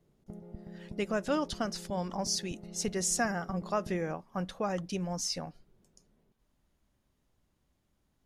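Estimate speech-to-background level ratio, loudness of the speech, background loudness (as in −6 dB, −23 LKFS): 14.0 dB, −33.5 LKFS, −47.5 LKFS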